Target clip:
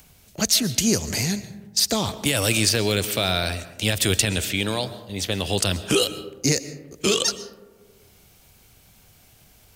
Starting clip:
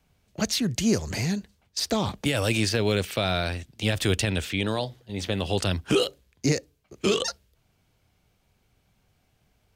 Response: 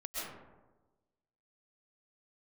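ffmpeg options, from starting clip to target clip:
-filter_complex "[0:a]crystalizer=i=2.5:c=0,asplit=2[a][b];[1:a]atrim=start_sample=2205[c];[b][c]afir=irnorm=-1:irlink=0,volume=-14dB[d];[a][d]amix=inputs=2:normalize=0,acompressor=mode=upward:threshold=-43dB:ratio=2.5"

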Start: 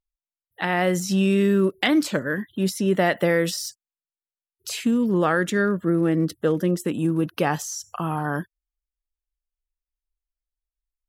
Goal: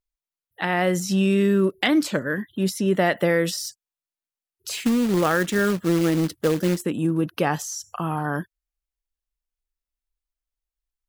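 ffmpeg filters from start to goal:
-filter_complex "[0:a]asettb=1/sr,asplit=3[a][b][c];[a]atrim=end=4.704[d];[b]atrim=start=4.7:end=6.82,asetpts=PTS-STARTPTS,afade=t=in:d=0.004:c=qsin,afade=t=out:st=2.116:d=0.004:c=qsin,acrusher=bits=3:mode=log:mix=0:aa=0.000001[e];[c]atrim=start=6.816[f];[d][e]acrossfade=d=0.004:c1=hsin:c2=qsin[g];[g][f]acrossfade=d=0.004:c1=qsin:c2=hsin"

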